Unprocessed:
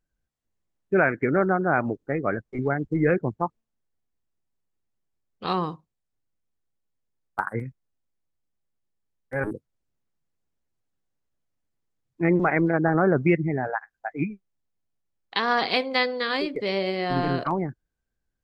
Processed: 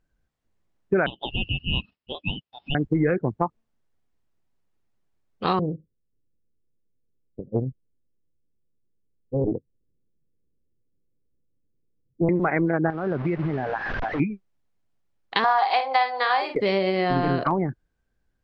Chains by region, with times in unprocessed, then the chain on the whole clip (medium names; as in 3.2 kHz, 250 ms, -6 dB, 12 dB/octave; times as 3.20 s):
1.06–2.75 s: brick-wall FIR band-pass 1.1–4.2 kHz + ring modulator 1.4 kHz
5.59–12.29 s: steep low-pass 530 Hz 96 dB/octave + loudspeaker Doppler distortion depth 0.51 ms
12.90–14.20 s: one-bit delta coder 32 kbps, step -27.5 dBFS + low-pass 1.9 kHz + compression 3:1, threshold -32 dBFS
15.44–16.55 s: resonant high-pass 810 Hz, resonance Q 6.1 + doubling 49 ms -8.5 dB
whole clip: low-pass 3 kHz 6 dB/octave; compression 5:1, threshold -27 dBFS; trim +8 dB